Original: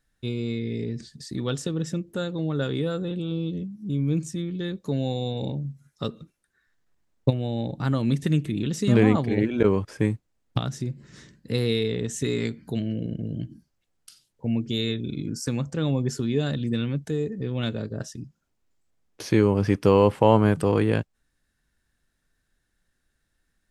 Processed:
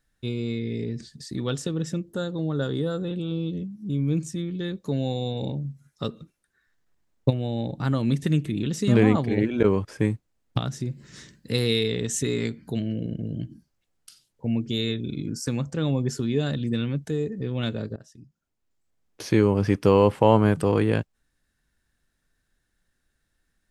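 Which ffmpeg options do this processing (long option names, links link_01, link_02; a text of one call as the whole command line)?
ffmpeg -i in.wav -filter_complex "[0:a]asettb=1/sr,asplit=3[link_01][link_02][link_03];[link_01]atrim=end=2.084[link_04];[link_02]atrim=start=2.08:end=3,asetpts=PTS-STARTPTS,afade=type=in:duration=0.004:curve=qsin,afade=type=out:start_time=0.916:duration=0.004:curve=qsin,equalizer=frequency=2400:width_type=o:width=0.37:gain=-14[link_05];[link_03]atrim=start=2.996[link_06];[link_04][link_05]acrossfade=duration=0.004:curve1=hsin:curve2=qsin[link_07];[link_07][link_06]acrossfade=duration=0.004:curve1=qsin:curve2=hsin,asettb=1/sr,asplit=3[link_08][link_09][link_10];[link_08]atrim=end=10.914[link_11];[link_09]atrim=start=10.91:end=12.22,asetpts=PTS-STARTPTS,afade=type=in:duration=0.004:curve=qsin,afade=type=out:start_time=1.306:duration=0.004:curve=qsin,highshelf=frequency=2100:gain=6.5[link_12];[link_10]atrim=start=12.216[link_13];[link_11][link_12]acrossfade=duration=0.004:curve1=hsin:curve2=qsin[link_14];[link_14][link_13]acrossfade=duration=0.004:curve1=qsin:curve2=hsin,asplit=2[link_15][link_16];[link_15]atrim=end=17.96,asetpts=PTS-STARTPTS,afade=type=out:start_time=17.956:duration=0.004:curve=hsin:silence=0.11885[link_17];[link_16]atrim=start=17.96,asetpts=PTS-STARTPTS,afade=type=in:duration=1.28:silence=0.11885[link_18];[link_17][link_18]concat=n=2:v=0:a=1" out.wav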